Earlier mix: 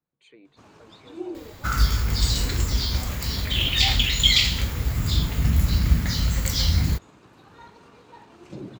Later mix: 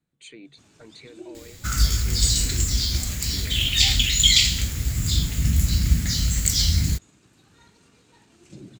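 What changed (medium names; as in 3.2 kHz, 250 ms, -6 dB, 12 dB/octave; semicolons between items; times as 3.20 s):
speech +10.5 dB; first sound -3.5 dB; master: add ten-band graphic EQ 500 Hz -6 dB, 1 kHz -10 dB, 8 kHz +11 dB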